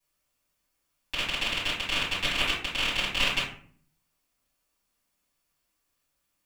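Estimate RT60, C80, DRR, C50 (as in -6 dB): 0.50 s, 9.0 dB, -12.0 dB, 3.0 dB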